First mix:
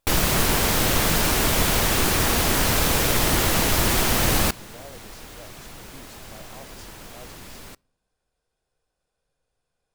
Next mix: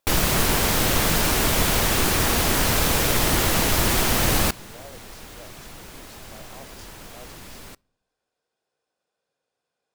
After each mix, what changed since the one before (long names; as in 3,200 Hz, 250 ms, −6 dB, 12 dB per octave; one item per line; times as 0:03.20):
speech: add band-pass filter 230–7,900 Hz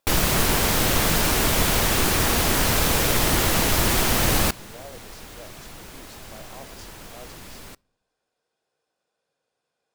speech: send +6.5 dB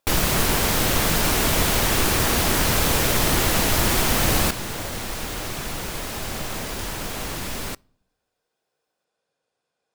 second sound +11.5 dB